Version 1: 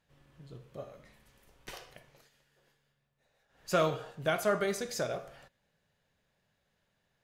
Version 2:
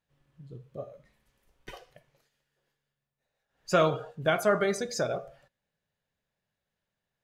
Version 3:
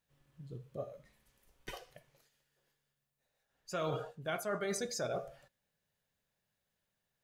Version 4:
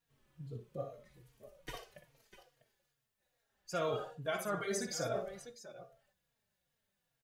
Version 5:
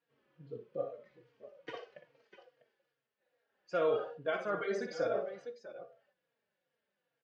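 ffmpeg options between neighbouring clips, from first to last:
-af "afftdn=nr=13:nf=-44,volume=1.68"
-af "highshelf=f=5500:g=7.5,areverse,acompressor=threshold=0.0251:ratio=8,areverse,volume=0.841"
-filter_complex "[0:a]aecho=1:1:59|648:0.398|0.178,asplit=2[s0][s1];[s1]adelay=3.7,afreqshift=-2.4[s2];[s0][s2]amix=inputs=2:normalize=1,volume=1.41"
-af "highpass=220,equalizer=f=310:t=q:w=4:g=4,equalizer=f=490:t=q:w=4:g=9,equalizer=f=1500:t=q:w=4:g=3,equalizer=f=3800:t=q:w=4:g=-6,lowpass=f=4200:w=0.5412,lowpass=f=4200:w=1.3066"

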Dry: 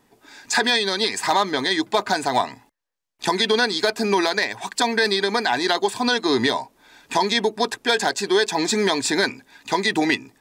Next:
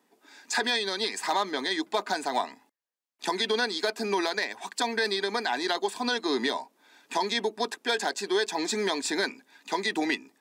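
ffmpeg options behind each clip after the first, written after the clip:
-af "highpass=f=210:w=0.5412,highpass=f=210:w=1.3066,volume=0.422"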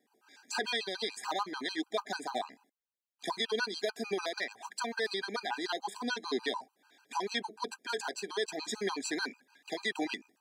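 -af "afftfilt=real='re*gt(sin(2*PI*6.8*pts/sr)*(1-2*mod(floor(b*sr/1024/800),2)),0)':imag='im*gt(sin(2*PI*6.8*pts/sr)*(1-2*mod(floor(b*sr/1024/800),2)),0)':win_size=1024:overlap=0.75,volume=0.631"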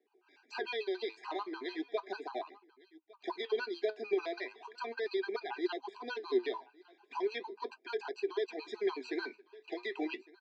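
-af "aecho=1:1:1157:0.075,flanger=delay=2.3:depth=7.2:regen=72:speed=0.37:shape=sinusoidal,highpass=f=350:w=0.5412,highpass=f=350:w=1.3066,equalizer=f=370:t=q:w=4:g=8,equalizer=f=550:t=q:w=4:g=-8,equalizer=f=840:t=q:w=4:g=-7,equalizer=f=1300:t=q:w=4:g=-7,equalizer=f=1800:t=q:w=4:g=-9,equalizer=f=3400:t=q:w=4:g=-9,lowpass=f=3500:w=0.5412,lowpass=f=3500:w=1.3066,volume=1.78"

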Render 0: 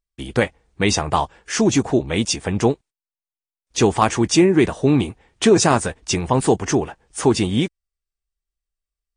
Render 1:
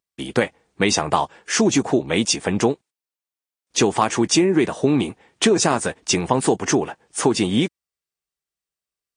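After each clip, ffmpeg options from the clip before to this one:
-af "highpass=160,acompressor=threshold=0.158:ratio=6,volume=1.41"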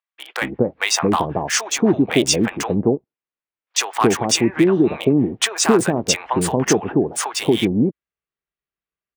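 -filter_complex "[0:a]acrossover=split=3100[s0][s1];[s1]aeval=exprs='val(0)*gte(abs(val(0)),0.0282)':c=same[s2];[s0][s2]amix=inputs=2:normalize=0,acrossover=split=730[s3][s4];[s3]adelay=230[s5];[s5][s4]amix=inputs=2:normalize=0,volume=1.33"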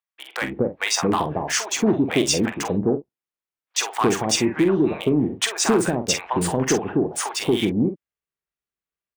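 -filter_complex "[0:a]asoftclip=type=tanh:threshold=0.562,asplit=2[s0][s1];[s1]adelay=46,volume=0.355[s2];[s0][s2]amix=inputs=2:normalize=0,volume=0.708"

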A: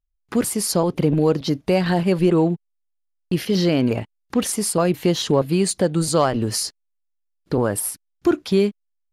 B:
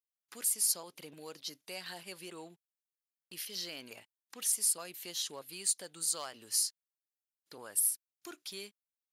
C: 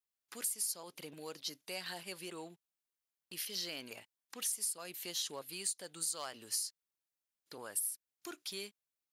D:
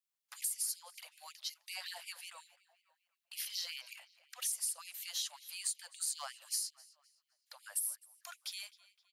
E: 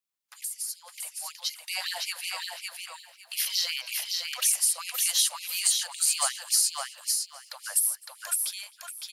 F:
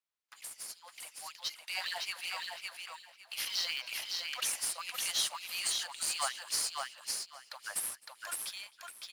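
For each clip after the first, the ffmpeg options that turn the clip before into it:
-af "aderivative,volume=0.501"
-af "acompressor=threshold=0.02:ratio=10,volume=1.12"
-filter_complex "[0:a]asplit=2[s0][s1];[s1]adelay=259,lowpass=f=4500:p=1,volume=0.119,asplit=2[s2][s3];[s3]adelay=259,lowpass=f=4500:p=1,volume=0.51,asplit=2[s4][s5];[s5]adelay=259,lowpass=f=4500:p=1,volume=0.51,asplit=2[s6][s7];[s7]adelay=259,lowpass=f=4500:p=1,volume=0.51[s8];[s0][s2][s4][s6][s8]amix=inputs=5:normalize=0,afftfilt=real='re*gte(b*sr/1024,510*pow(2100/510,0.5+0.5*sin(2*PI*5.4*pts/sr)))':imag='im*gte(b*sr/1024,510*pow(2100/510,0.5+0.5*sin(2*PI*5.4*pts/sr)))':win_size=1024:overlap=0.75"
-filter_complex "[0:a]dynaudnorm=f=370:g=7:m=3.76,asplit=2[s0][s1];[s1]aecho=0:1:559|1118|1677:0.668|0.134|0.0267[s2];[s0][s2]amix=inputs=2:normalize=0,volume=1.12"
-filter_complex "[0:a]acrusher=bits=2:mode=log:mix=0:aa=0.000001,asplit=2[s0][s1];[s1]highpass=f=720:p=1,volume=2.51,asoftclip=type=tanh:threshold=0.668[s2];[s0][s2]amix=inputs=2:normalize=0,lowpass=f=2600:p=1,volume=0.501,volume=0.531"

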